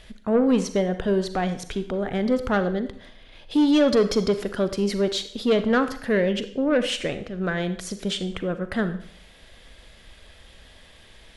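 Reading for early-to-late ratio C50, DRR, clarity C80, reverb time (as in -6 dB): 11.5 dB, 10.0 dB, 14.5 dB, 0.60 s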